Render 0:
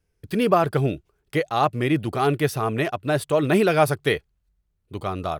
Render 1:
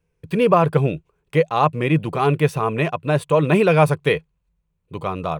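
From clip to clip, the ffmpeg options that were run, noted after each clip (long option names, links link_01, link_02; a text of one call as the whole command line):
ffmpeg -i in.wav -af "equalizer=frequency=160:width_type=o:width=0.33:gain=12,equalizer=frequency=500:width_type=o:width=0.33:gain=9,equalizer=frequency=1000:width_type=o:width=0.33:gain=10,equalizer=frequency=2500:width_type=o:width=0.33:gain=7,equalizer=frequency=5000:width_type=o:width=0.33:gain=-6,equalizer=frequency=12500:width_type=o:width=0.33:gain=-11,volume=-1dB" out.wav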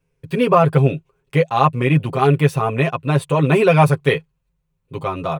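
ffmpeg -i in.wav -af "aecho=1:1:7.5:0.79" out.wav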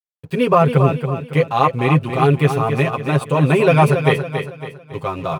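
ffmpeg -i in.wav -af "aeval=exprs='sgn(val(0))*max(abs(val(0))-0.00447,0)':channel_layout=same,aecho=1:1:278|556|834|1112|1390:0.398|0.163|0.0669|0.0274|0.0112" out.wav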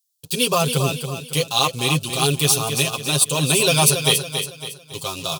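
ffmpeg -i in.wav -af "aexciter=amount=13.5:drive=8.8:freq=3200,volume=-7dB" out.wav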